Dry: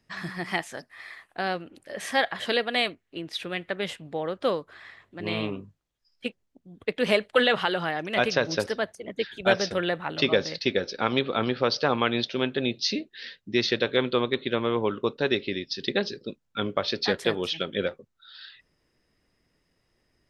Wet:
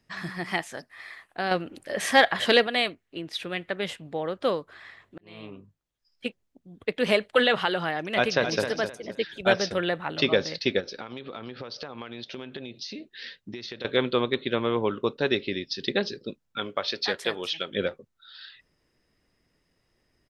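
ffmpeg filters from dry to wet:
ffmpeg -i in.wav -filter_complex "[0:a]asettb=1/sr,asplit=3[link_01][link_02][link_03];[link_01]atrim=end=1.514[link_04];[link_02]atrim=start=1.51:end=2.67,asetpts=PTS-STARTPTS,afade=type=in:duration=0.004:curve=qsin,afade=type=out:start_time=1.156:duration=0.004:curve=qsin,acontrast=54[link_05];[link_03]atrim=start=2.666[link_06];[link_04][link_05]acrossfade=duration=0.004:curve1=hsin:curve2=qsin[link_07];[link_07][link_06]acrossfade=duration=0.004:curve1=qsin:curve2=hsin,asplit=2[link_08][link_09];[link_09]afade=type=in:start_time=8.14:duration=0.01,afade=type=out:start_time=8.63:duration=0.01,aecho=0:1:260|520|780:0.375837|0.0939594|0.0234898[link_10];[link_08][link_10]amix=inputs=2:normalize=0,asettb=1/sr,asplit=3[link_11][link_12][link_13];[link_11]atrim=end=10.804[link_14];[link_12]atrim=start=10.8:end=13.85,asetpts=PTS-STARTPTS,afade=type=in:duration=0.004:curve=qsin,afade=type=out:start_time=3.046:duration=0.004:curve=qsin,acompressor=threshold=-33dB:ratio=16:attack=3.2:release=140:knee=1:detection=peak[link_15];[link_13]atrim=start=13.846[link_16];[link_14][link_15]acrossfade=duration=0.004:curve1=hsin:curve2=qsin[link_17];[link_17][link_16]acrossfade=duration=0.004:curve1=qsin:curve2=hsin,asettb=1/sr,asplit=3[link_18][link_19][link_20];[link_18]atrim=end=16.584[link_21];[link_19]atrim=start=16.58:end=17.71,asetpts=PTS-STARTPTS,afade=type=in:duration=0.004:curve=qsin,afade=type=out:start_time=1.126:duration=0.004:curve=qsin,lowshelf=frequency=350:gain=-12[link_22];[link_20]atrim=start=17.706[link_23];[link_21][link_22]acrossfade=duration=0.004:curve1=hsin:curve2=qsin[link_24];[link_24][link_23]acrossfade=duration=0.004:curve1=qsin:curve2=hsin,asplit=2[link_25][link_26];[link_25]atrim=end=5.18,asetpts=PTS-STARTPTS,afade=type=out:start_time=5.176:duration=0.004:curve=hsin[link_27];[link_26]atrim=start=5.18,asetpts=PTS-STARTPTS,afade=type=in:duration=1.08[link_28];[link_27][link_28]concat=n=2:v=0:a=1" out.wav

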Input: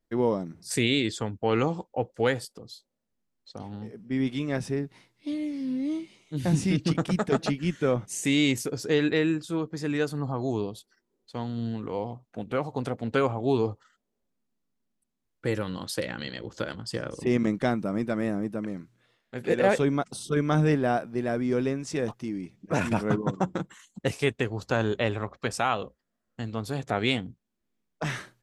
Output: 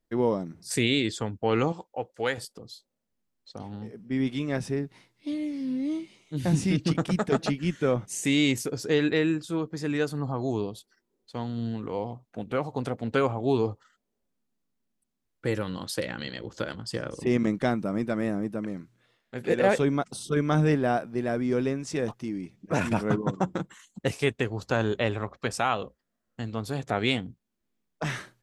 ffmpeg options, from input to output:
ffmpeg -i in.wav -filter_complex "[0:a]asettb=1/sr,asplit=3[link_01][link_02][link_03];[link_01]atrim=end=1.724[link_04];[link_02]atrim=start=1.72:end=2.38,asetpts=PTS-STARTPTS,afade=type=in:duration=0.004:curve=qsin,afade=type=out:start_time=0.656:duration=0.004:curve=qsin,lowshelf=frequency=430:gain=-10[link_05];[link_03]atrim=start=2.376[link_06];[link_04][link_05]acrossfade=duration=0.004:curve1=hsin:curve2=qsin[link_07];[link_07][link_06]acrossfade=duration=0.004:curve1=qsin:curve2=hsin" out.wav

